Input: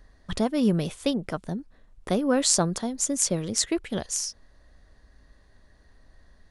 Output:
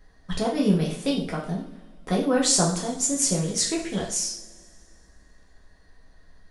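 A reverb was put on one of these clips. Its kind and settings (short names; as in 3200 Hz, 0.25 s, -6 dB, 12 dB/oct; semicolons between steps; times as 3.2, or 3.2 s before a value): two-slope reverb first 0.49 s, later 2.3 s, from -21 dB, DRR -4 dB; gain -3.5 dB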